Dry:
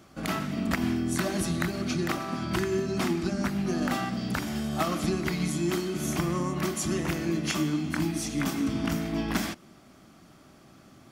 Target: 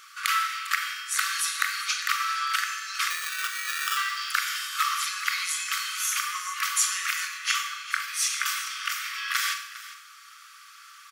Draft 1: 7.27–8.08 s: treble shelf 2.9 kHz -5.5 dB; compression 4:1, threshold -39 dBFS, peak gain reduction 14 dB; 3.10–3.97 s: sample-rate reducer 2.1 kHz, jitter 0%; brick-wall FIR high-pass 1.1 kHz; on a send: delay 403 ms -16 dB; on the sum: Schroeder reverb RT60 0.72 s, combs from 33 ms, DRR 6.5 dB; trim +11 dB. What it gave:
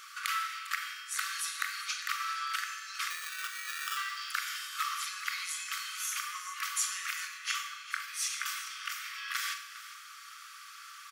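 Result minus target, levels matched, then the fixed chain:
compression: peak gain reduction +8 dB
7.27–8.08 s: treble shelf 2.9 kHz -5.5 dB; compression 4:1, threshold -28 dBFS, peak gain reduction 6 dB; 3.10–3.97 s: sample-rate reducer 2.1 kHz, jitter 0%; brick-wall FIR high-pass 1.1 kHz; on a send: delay 403 ms -16 dB; on the sum: Schroeder reverb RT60 0.72 s, combs from 33 ms, DRR 6.5 dB; trim +11 dB

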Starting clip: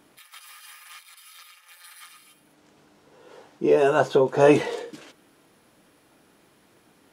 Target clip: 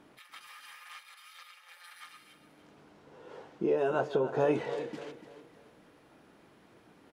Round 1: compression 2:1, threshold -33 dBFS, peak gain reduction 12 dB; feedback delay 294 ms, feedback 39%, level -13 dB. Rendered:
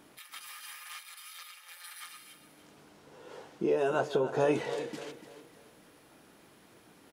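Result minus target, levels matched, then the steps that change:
2 kHz band +4.0 dB
add after compression: low-pass 2.4 kHz 6 dB/octave

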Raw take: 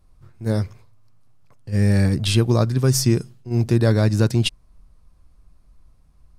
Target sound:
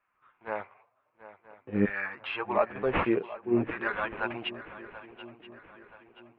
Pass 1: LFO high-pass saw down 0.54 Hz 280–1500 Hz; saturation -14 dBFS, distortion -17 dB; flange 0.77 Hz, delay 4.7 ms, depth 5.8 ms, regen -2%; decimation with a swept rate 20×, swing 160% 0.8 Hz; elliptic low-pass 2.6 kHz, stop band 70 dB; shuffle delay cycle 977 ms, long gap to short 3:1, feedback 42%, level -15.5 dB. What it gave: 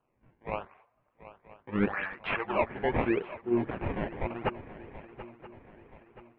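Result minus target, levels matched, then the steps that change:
saturation: distortion +17 dB; decimation with a swept rate: distortion +9 dB
change: saturation -3.5 dBFS, distortion -33 dB; change: decimation with a swept rate 5×, swing 160% 0.8 Hz

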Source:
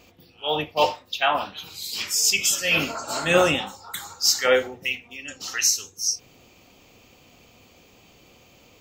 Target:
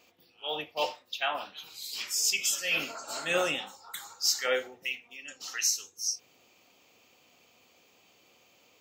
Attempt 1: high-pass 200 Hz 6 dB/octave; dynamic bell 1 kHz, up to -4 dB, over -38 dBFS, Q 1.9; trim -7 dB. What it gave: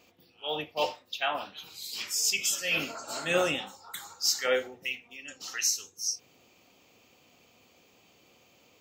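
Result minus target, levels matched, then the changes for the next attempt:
250 Hz band +4.0 dB
change: high-pass 500 Hz 6 dB/octave

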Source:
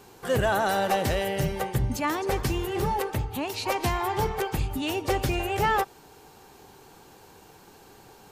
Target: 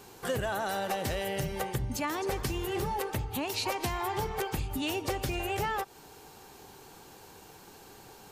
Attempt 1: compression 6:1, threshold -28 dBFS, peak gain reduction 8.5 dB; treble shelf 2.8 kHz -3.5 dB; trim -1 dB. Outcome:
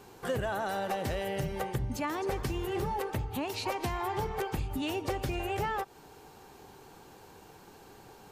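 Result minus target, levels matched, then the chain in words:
4 kHz band -3.0 dB
compression 6:1, threshold -28 dBFS, peak gain reduction 8.5 dB; treble shelf 2.8 kHz +3.5 dB; trim -1 dB

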